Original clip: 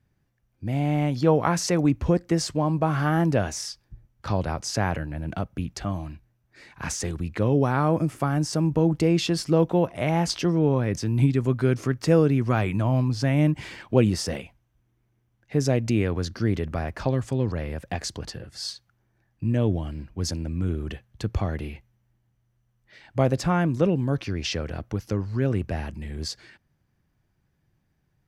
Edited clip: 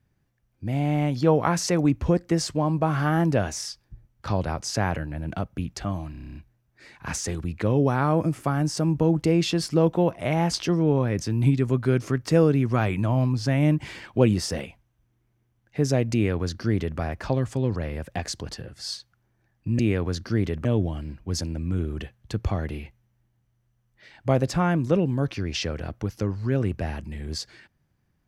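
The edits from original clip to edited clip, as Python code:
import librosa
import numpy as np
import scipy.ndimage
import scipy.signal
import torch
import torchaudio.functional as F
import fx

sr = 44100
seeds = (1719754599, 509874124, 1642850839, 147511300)

y = fx.edit(x, sr, fx.stutter(start_s=6.11, slice_s=0.03, count=9),
    fx.duplicate(start_s=15.89, length_s=0.86, to_s=19.55), tone=tone)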